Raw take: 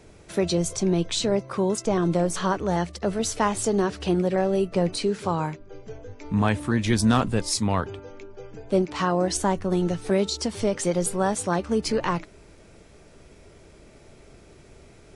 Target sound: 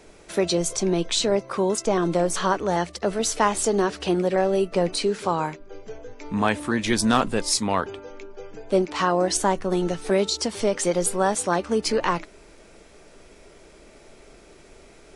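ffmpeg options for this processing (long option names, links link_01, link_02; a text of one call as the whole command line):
ffmpeg -i in.wav -af "equalizer=frequency=100:width=0.79:gain=-13,volume=3.5dB" out.wav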